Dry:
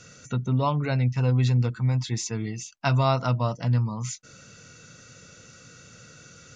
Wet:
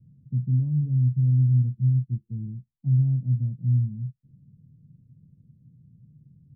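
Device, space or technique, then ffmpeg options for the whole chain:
the neighbour's flat through the wall: -af "lowpass=frequency=220:width=0.5412,lowpass=frequency=220:width=1.3066,equalizer=frequency=140:width_type=o:width=0.53:gain=7,volume=-3dB"

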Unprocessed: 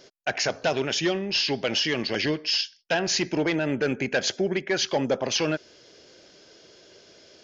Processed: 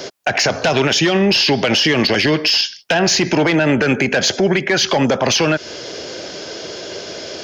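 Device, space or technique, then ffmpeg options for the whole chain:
mastering chain: -filter_complex "[0:a]highpass=50,equalizer=frequency=740:width_type=o:width=1.4:gain=3.5,acrossover=split=240|870[link_01][link_02][link_03];[link_01]acompressor=threshold=-34dB:ratio=4[link_04];[link_02]acompressor=threshold=-33dB:ratio=4[link_05];[link_03]acompressor=threshold=-28dB:ratio=4[link_06];[link_04][link_05][link_06]amix=inputs=3:normalize=0,acompressor=threshold=-31dB:ratio=2.5,asoftclip=type=tanh:threshold=-21dB,alimiter=level_in=28dB:limit=-1dB:release=50:level=0:latency=1,volume=-6dB"

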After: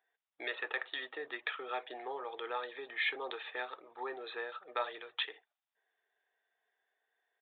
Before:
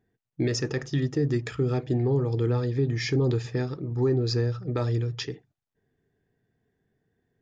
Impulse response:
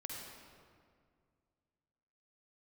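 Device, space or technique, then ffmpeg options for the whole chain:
musical greeting card: -af "aresample=8000,aresample=44100,highpass=frequency=700:width=0.5412,highpass=frequency=700:width=1.3066,equalizer=frequency=3800:width_type=o:width=0.22:gain=4.5,volume=1.5dB"

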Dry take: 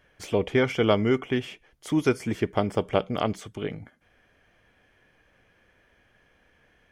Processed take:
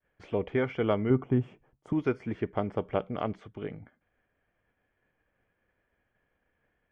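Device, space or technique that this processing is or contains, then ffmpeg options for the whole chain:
hearing-loss simulation: -filter_complex "[0:a]lowpass=2100,agate=range=-33dB:threshold=-57dB:ratio=3:detection=peak,asettb=1/sr,asplit=3[link_01][link_02][link_03];[link_01]atrim=end=1.104[link_04];[link_02]atrim=start=1.1:end=1.93,asetpts=PTS-STARTPTS,afade=type=in:duration=0.004:curve=qsin,afade=type=out:start_time=0.826:duration=0.004:curve=qsin,equalizer=frequency=125:width_type=o:width=1:gain=11,equalizer=frequency=250:width_type=o:width=1:gain=4,equalizer=frequency=1000:width_type=o:width=1:gain=4,equalizer=frequency=2000:width_type=o:width=1:gain=-8,equalizer=frequency=4000:width_type=o:width=1:gain=-11,equalizer=frequency=8000:width_type=o:width=1:gain=6[link_05];[link_03]atrim=start=1.926[link_06];[link_04][link_05]acrossfade=duration=0.004:curve1=hsin:curve2=qsin[link_07];[link_07][link_06]acrossfade=duration=0.004:curve1=qsin:curve2=hsin,volume=-5.5dB"

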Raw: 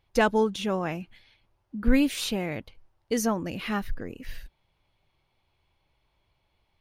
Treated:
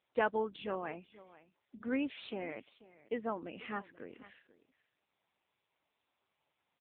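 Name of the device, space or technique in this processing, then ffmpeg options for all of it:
satellite phone: -af "highpass=300,lowpass=3200,aecho=1:1:488:0.119,volume=-7.5dB" -ar 8000 -c:a libopencore_amrnb -b:a 6700

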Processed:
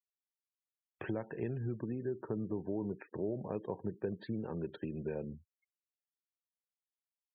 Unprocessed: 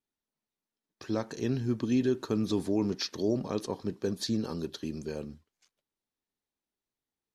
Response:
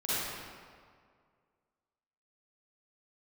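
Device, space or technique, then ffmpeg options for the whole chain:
bass amplifier: -filter_complex "[0:a]acompressor=threshold=-43dB:ratio=4,highpass=frequency=64:width=0.5412,highpass=frequency=64:width=1.3066,equalizer=frequency=75:width_type=q:width=4:gain=-4,equalizer=frequency=260:width_type=q:width=4:gain=-9,equalizer=frequency=1200:width_type=q:width=4:gain=-8,lowpass=frequency=2400:width=0.5412,lowpass=frequency=2400:width=1.3066,asplit=3[link_01][link_02][link_03];[link_01]afade=type=out:start_time=1.78:duration=0.02[link_04];[link_02]lowpass=1600,afade=type=in:start_time=1.78:duration=0.02,afade=type=out:start_time=3.52:duration=0.02[link_05];[link_03]afade=type=in:start_time=3.52:duration=0.02[link_06];[link_04][link_05][link_06]amix=inputs=3:normalize=0,afftfilt=real='re*gte(hypot(re,im),0.001)':imag='im*gte(hypot(re,im),0.001)':win_size=1024:overlap=0.75,volume=8.5dB"

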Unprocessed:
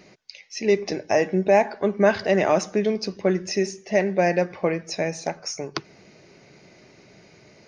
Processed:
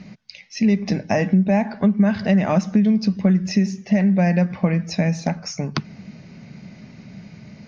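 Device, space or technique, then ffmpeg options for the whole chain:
jukebox: -af "lowpass=5400,lowshelf=frequency=280:width_type=q:width=3:gain=8.5,acompressor=threshold=-18dB:ratio=4,volume=3.5dB"

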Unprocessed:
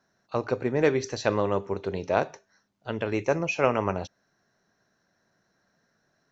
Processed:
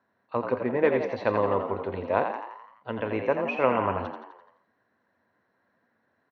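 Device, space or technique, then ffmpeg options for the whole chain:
frequency-shifting delay pedal into a guitar cabinet: -filter_complex "[0:a]asplit=8[link_01][link_02][link_03][link_04][link_05][link_06][link_07][link_08];[link_02]adelay=85,afreqshift=68,volume=-7dB[link_09];[link_03]adelay=170,afreqshift=136,volume=-12.4dB[link_10];[link_04]adelay=255,afreqshift=204,volume=-17.7dB[link_11];[link_05]adelay=340,afreqshift=272,volume=-23.1dB[link_12];[link_06]adelay=425,afreqshift=340,volume=-28.4dB[link_13];[link_07]adelay=510,afreqshift=408,volume=-33.8dB[link_14];[link_08]adelay=595,afreqshift=476,volume=-39.1dB[link_15];[link_01][link_09][link_10][link_11][link_12][link_13][link_14][link_15]amix=inputs=8:normalize=0,highpass=82,equalizer=frequency=89:width_type=q:width=4:gain=7,equalizer=frequency=160:width_type=q:width=4:gain=-7,equalizer=frequency=240:width_type=q:width=4:gain=6,equalizer=frequency=510:width_type=q:width=4:gain=5,equalizer=frequency=1000:width_type=q:width=4:gain=9,equalizer=frequency=1900:width_type=q:width=4:gain=4,lowpass=frequency=3400:width=0.5412,lowpass=frequency=3400:width=1.3066,volume=-4dB"

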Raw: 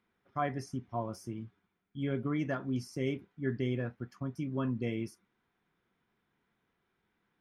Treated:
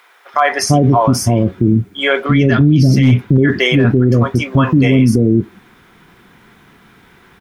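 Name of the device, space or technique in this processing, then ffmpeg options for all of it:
loud club master: -filter_complex "[0:a]asettb=1/sr,asplit=3[link_01][link_02][link_03];[link_01]atrim=end=2.264[link_04];[link_02]atrim=start=2.26:end=3.04,asetpts=PTS-STARTPTS,afade=type=in:duration=0.004:curve=qsin,afade=type=out:start_time=0.776:duration=0.004:curve=qsin,equalizer=frequency=125:width_type=o:width=1:gain=8,equalizer=frequency=250:width_type=o:width=1:gain=3,equalizer=frequency=500:width_type=o:width=1:gain=-6,equalizer=frequency=1000:width_type=o:width=1:gain=-12,equalizer=frequency=4000:width_type=o:width=1:gain=7,equalizer=frequency=8000:width_type=o:width=1:gain=-12[link_05];[link_03]atrim=start=3.036[link_06];[link_04][link_05]acrossfade=duration=0.004:curve1=hsin:curve2=qsin[link_07];[link_07][link_06]acrossfade=duration=0.004:curve1=qsin:curve2=hsin,acrossover=split=550[link_08][link_09];[link_08]adelay=340[link_10];[link_10][link_09]amix=inputs=2:normalize=0,acompressor=threshold=-36dB:ratio=1.5,asoftclip=type=hard:threshold=-26dB,alimiter=level_in=35dB:limit=-1dB:release=50:level=0:latency=1,volume=-2dB"

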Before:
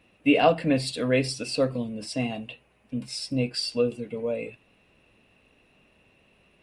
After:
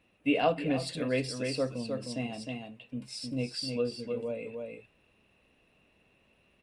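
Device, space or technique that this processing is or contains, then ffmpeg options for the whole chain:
ducked delay: -filter_complex "[0:a]asplit=3[link_01][link_02][link_03];[link_02]adelay=309,volume=-4dB[link_04];[link_03]apad=whole_len=305982[link_05];[link_04][link_05]sidechaincompress=threshold=-27dB:ratio=8:attack=16:release=307[link_06];[link_01][link_06]amix=inputs=2:normalize=0,volume=-7dB"

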